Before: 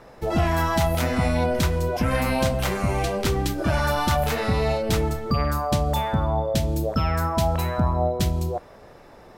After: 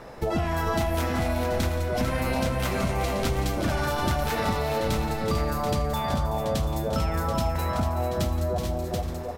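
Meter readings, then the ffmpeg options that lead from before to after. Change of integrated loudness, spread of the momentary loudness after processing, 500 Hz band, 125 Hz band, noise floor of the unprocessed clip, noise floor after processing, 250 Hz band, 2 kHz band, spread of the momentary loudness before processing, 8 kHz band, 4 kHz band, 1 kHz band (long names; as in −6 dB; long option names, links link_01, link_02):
−3.5 dB, 1 LU, −2.5 dB, −3.5 dB, −47 dBFS, −32 dBFS, −3.0 dB, −3.0 dB, 2 LU, −3.0 dB, −3.0 dB, −3.0 dB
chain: -filter_complex "[0:a]asplit=2[link_01][link_02];[link_02]aecho=0:1:77|173|376|428|732:0.15|0.15|0.335|0.251|0.299[link_03];[link_01][link_03]amix=inputs=2:normalize=0,acompressor=threshold=-28dB:ratio=5,asplit=2[link_04][link_05];[link_05]aecho=0:1:446:0.422[link_06];[link_04][link_06]amix=inputs=2:normalize=0,volume=4dB"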